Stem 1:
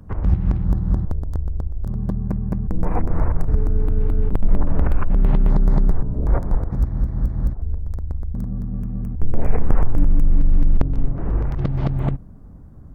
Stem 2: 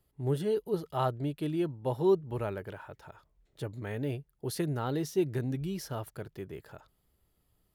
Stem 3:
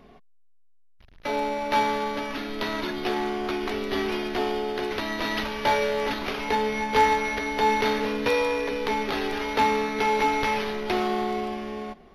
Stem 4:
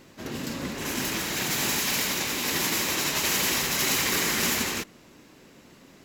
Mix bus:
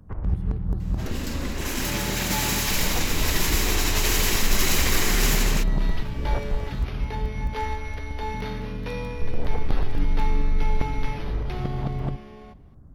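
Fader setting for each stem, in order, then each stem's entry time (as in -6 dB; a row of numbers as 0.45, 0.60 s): -7.0, -18.5, -11.0, +0.5 dB; 0.00, 0.00, 0.60, 0.80 s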